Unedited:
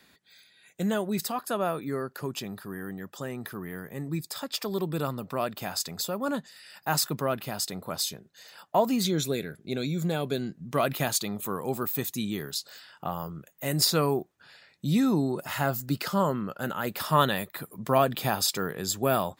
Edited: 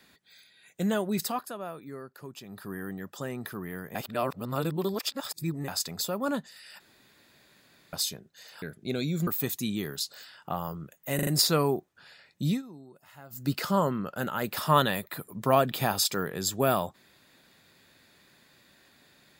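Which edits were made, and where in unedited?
0:01.36–0:02.64: duck −10 dB, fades 0.17 s
0:03.95–0:05.68: reverse
0:06.80–0:07.93: fill with room tone
0:08.62–0:09.44: remove
0:10.09–0:11.82: remove
0:13.70: stutter 0.04 s, 4 plays
0:14.90–0:15.88: duck −22 dB, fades 0.15 s

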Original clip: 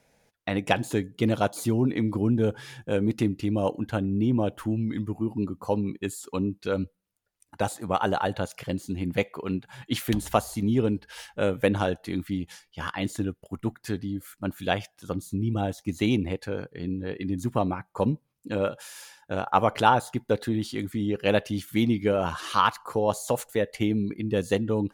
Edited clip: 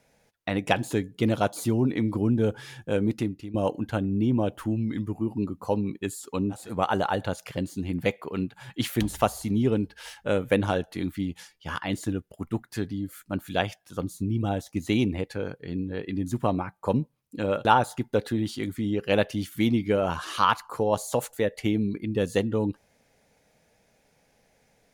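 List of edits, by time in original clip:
0:03.06–0:03.54: fade out, to −16 dB
0:06.61–0:07.73: remove, crossfade 0.24 s
0:18.77–0:19.81: remove

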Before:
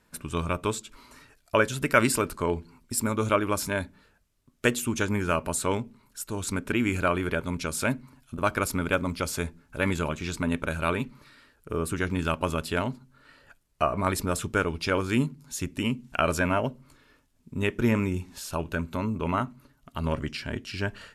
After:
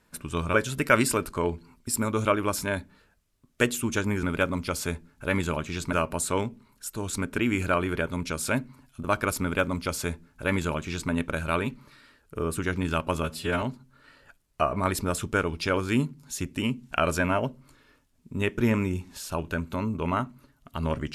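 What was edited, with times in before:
0:00.54–0:01.58: remove
0:08.75–0:10.45: duplicate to 0:05.27
0:12.57–0:12.83: time-stretch 1.5×

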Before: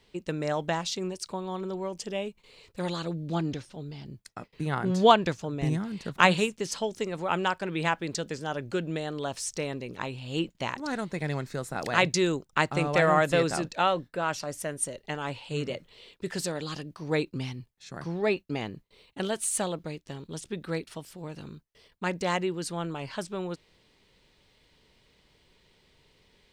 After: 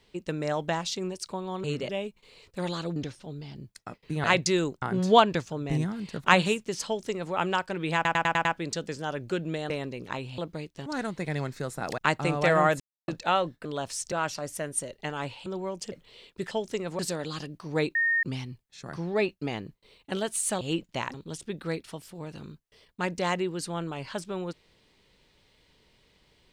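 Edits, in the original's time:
0:01.64–0:02.10: swap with 0:15.51–0:15.76
0:03.17–0:03.46: remove
0:06.78–0:07.26: duplicate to 0:16.35
0:07.87: stutter 0.10 s, 6 plays
0:09.12–0:09.59: move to 0:14.17
0:10.27–0:10.80: swap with 0:19.69–0:20.17
0:11.92–0:12.50: move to 0:04.74
0:13.32–0:13.60: silence
0:17.31: insert tone 1,840 Hz −21.5 dBFS 0.28 s

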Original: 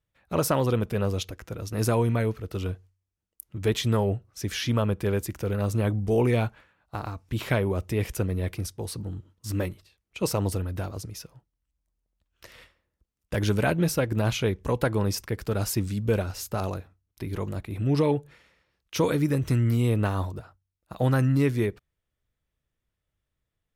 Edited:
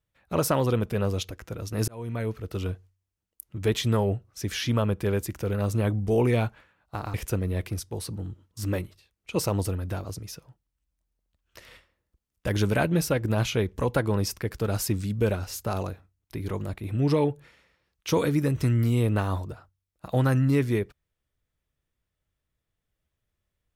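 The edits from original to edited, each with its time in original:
0:01.88–0:02.45: fade in
0:07.14–0:08.01: remove

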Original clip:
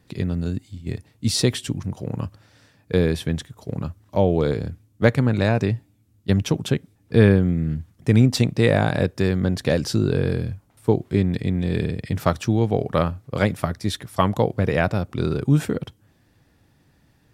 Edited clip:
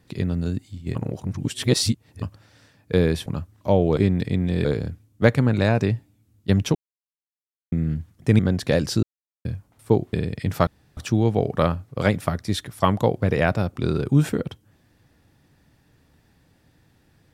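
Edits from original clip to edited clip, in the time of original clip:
0:00.95–0:02.22: reverse
0:03.26–0:03.74: remove
0:06.55–0:07.52: silence
0:08.19–0:09.37: remove
0:10.01–0:10.43: silence
0:11.11–0:11.79: move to 0:04.45
0:12.33: splice in room tone 0.30 s

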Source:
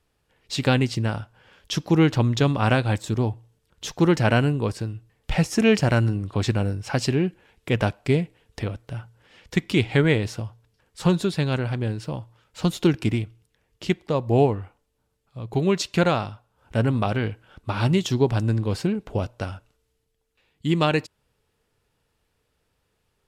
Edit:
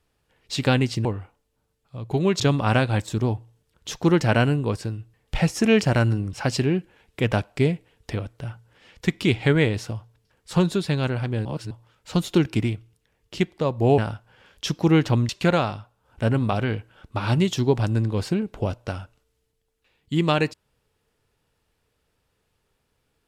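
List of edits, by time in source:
0:01.05–0:02.36: swap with 0:14.47–0:15.82
0:06.29–0:06.82: remove
0:11.94–0:12.20: reverse

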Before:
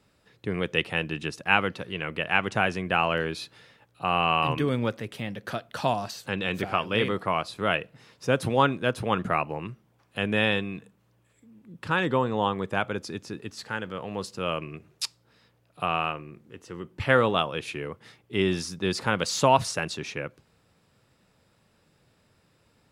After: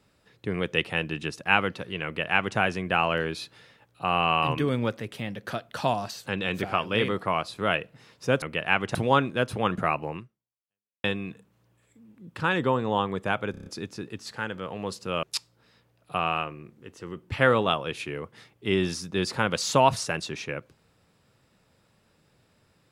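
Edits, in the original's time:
0:02.05–0:02.58: duplicate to 0:08.42
0:09.63–0:10.51: fade out exponential
0:12.98: stutter 0.03 s, 6 plays
0:14.55–0:14.91: remove

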